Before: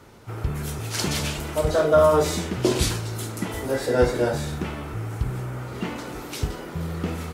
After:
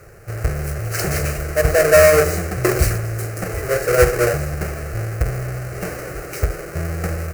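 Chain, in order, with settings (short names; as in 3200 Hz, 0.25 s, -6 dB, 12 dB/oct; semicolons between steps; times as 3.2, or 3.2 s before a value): half-waves squared off; fixed phaser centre 940 Hz, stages 6; gain +3.5 dB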